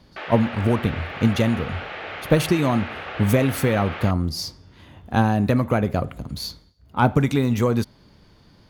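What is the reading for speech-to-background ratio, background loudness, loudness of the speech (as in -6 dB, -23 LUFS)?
11.0 dB, -33.0 LUFS, -22.0 LUFS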